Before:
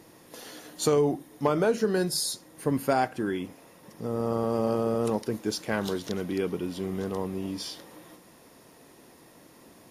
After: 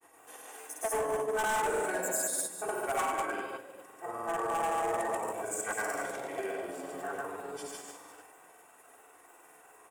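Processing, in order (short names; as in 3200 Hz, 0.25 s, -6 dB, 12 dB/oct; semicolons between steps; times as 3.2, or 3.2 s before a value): trilling pitch shifter +6.5 st, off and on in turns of 0.157 s; three-band isolator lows -24 dB, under 540 Hz, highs -16 dB, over 3100 Hz; doubler 23 ms -11 dB; on a send: reverse bouncing-ball echo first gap 70 ms, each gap 1.15×, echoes 5; on the sum: shoebox room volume 3100 m³, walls furnished, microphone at 3.6 m; grains 0.1 s, pitch spread up and down by 0 st; overloaded stage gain 25 dB; resonant high shelf 6100 Hz +11.5 dB, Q 3; gain -2 dB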